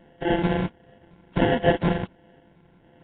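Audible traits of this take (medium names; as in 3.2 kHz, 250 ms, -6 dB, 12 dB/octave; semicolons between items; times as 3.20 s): a buzz of ramps at a fixed pitch in blocks of 64 samples; phasing stages 8, 1.4 Hz, lowest notch 530–2000 Hz; aliases and images of a low sample rate 1.2 kHz, jitter 0%; Nellymoser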